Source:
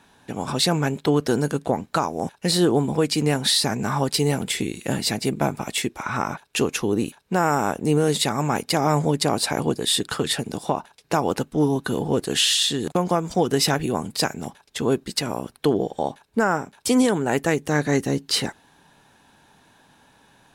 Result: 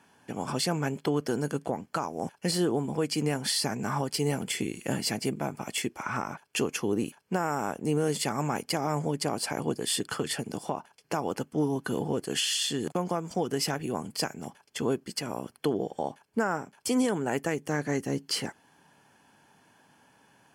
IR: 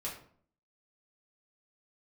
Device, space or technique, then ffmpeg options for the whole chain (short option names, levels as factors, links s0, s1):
PA system with an anti-feedback notch: -af "highpass=100,asuperstop=centerf=3800:order=4:qfactor=6.2,alimiter=limit=0.251:level=0:latency=1:release=371,volume=0.562"